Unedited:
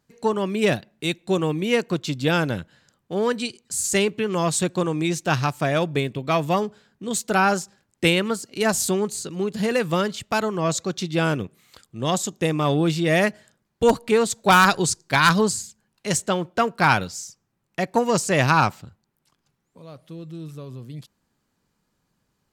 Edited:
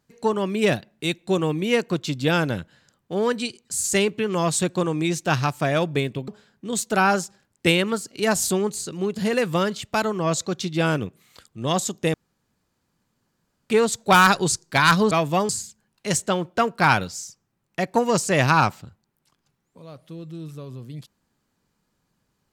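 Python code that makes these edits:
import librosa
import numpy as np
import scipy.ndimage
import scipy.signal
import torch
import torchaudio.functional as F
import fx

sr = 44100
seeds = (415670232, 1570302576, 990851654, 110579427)

y = fx.edit(x, sr, fx.move(start_s=6.28, length_s=0.38, to_s=15.49),
    fx.room_tone_fill(start_s=12.52, length_s=1.56), tone=tone)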